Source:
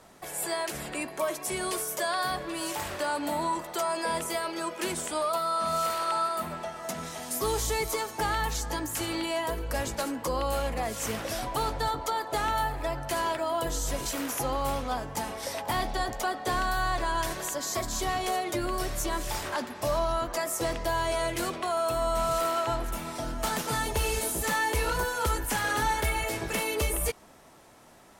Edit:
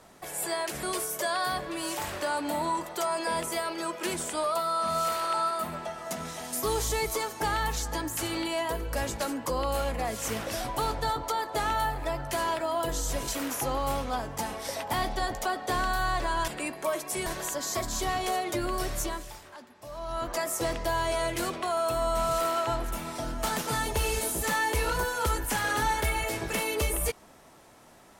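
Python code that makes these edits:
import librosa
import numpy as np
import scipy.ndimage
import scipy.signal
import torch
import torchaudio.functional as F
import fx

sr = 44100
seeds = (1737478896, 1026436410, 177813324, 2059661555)

y = fx.edit(x, sr, fx.move(start_s=0.83, length_s=0.78, to_s=17.26),
    fx.fade_down_up(start_s=19.02, length_s=1.26, db=-15.5, fade_s=0.45, curve='qua'), tone=tone)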